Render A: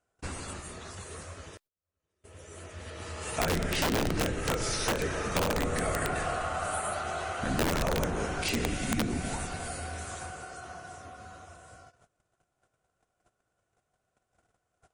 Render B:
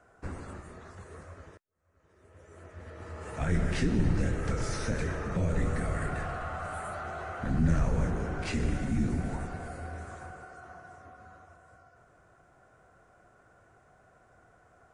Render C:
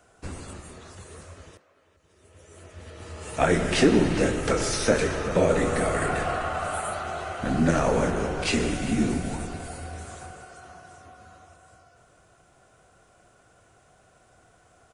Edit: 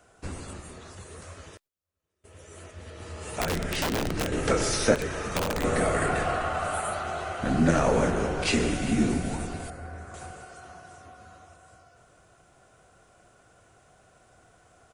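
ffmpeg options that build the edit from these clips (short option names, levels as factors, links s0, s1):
-filter_complex "[0:a]asplit=3[s0][s1][s2];[2:a]asplit=5[s3][s4][s5][s6][s7];[s3]atrim=end=1.222[s8];[s0]atrim=start=1.218:end=2.712[s9];[s4]atrim=start=2.708:end=3.392[s10];[s1]atrim=start=3.388:end=4.322[s11];[s5]atrim=start=4.318:end=4.952[s12];[s2]atrim=start=4.948:end=5.642[s13];[s6]atrim=start=5.638:end=9.702[s14];[1:a]atrim=start=9.698:end=10.142[s15];[s7]atrim=start=10.138[s16];[s8][s9]acrossfade=d=0.004:c1=hsin:c2=hsin[s17];[s17][s10]acrossfade=d=0.004:c1=hsin:c2=hsin[s18];[s18][s11]acrossfade=d=0.004:c1=hsin:c2=hsin[s19];[s19][s12]acrossfade=d=0.004:c1=hsin:c2=hsin[s20];[s20][s13]acrossfade=d=0.004:c1=hsin:c2=hsin[s21];[s21][s14]acrossfade=d=0.004:c1=hsin:c2=hsin[s22];[s22][s15]acrossfade=d=0.004:c1=hsin:c2=hsin[s23];[s23][s16]acrossfade=d=0.004:c1=hsin:c2=hsin"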